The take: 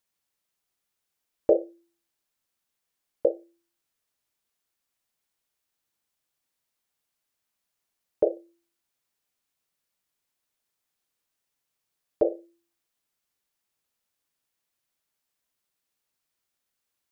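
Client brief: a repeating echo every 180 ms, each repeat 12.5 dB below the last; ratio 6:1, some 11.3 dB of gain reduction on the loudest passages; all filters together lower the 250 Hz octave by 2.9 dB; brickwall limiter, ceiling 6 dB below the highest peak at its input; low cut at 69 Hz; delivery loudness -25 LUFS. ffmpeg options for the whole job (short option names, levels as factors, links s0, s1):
-af "highpass=69,equalizer=f=250:t=o:g=-5,acompressor=threshold=0.0355:ratio=6,alimiter=limit=0.0708:level=0:latency=1,aecho=1:1:180|360|540:0.237|0.0569|0.0137,volume=7.94"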